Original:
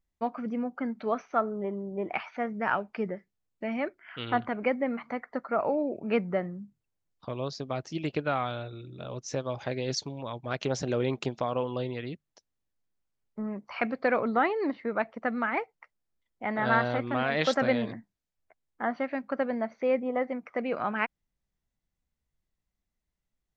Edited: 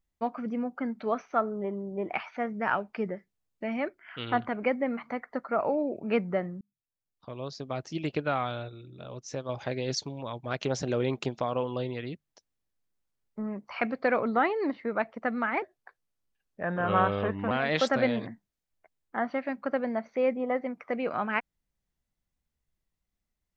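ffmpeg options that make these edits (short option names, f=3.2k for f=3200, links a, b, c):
-filter_complex "[0:a]asplit=6[a][b][c][d][e][f];[a]atrim=end=6.61,asetpts=PTS-STARTPTS,afade=t=out:st=6.606:d=0.004:c=hsin[g];[b]atrim=start=6.61:end=8.692,asetpts=PTS-STARTPTS,afade=t=in:d=1.29[h];[c]atrim=start=8.688:end=9.492,asetpts=PTS-STARTPTS,volume=-3.5dB[i];[d]atrim=start=9.488:end=15.624[j];[e]atrim=start=15.62:end=17.17,asetpts=PTS-STARTPTS,asetrate=36162,aresample=44100[k];[f]atrim=start=17.166[l];[g][h]concat=n=2:v=0:a=1[m];[m][i]acrossfade=d=0.004:c1=hsin:c2=hsin[n];[n][j]acrossfade=d=0.004:c1=hsin:c2=hsin[o];[o][k]acrossfade=d=0.004:c1=hsin:c2=hsin[p];[p][l]acrossfade=d=0.004:c1=hsin:c2=hsin"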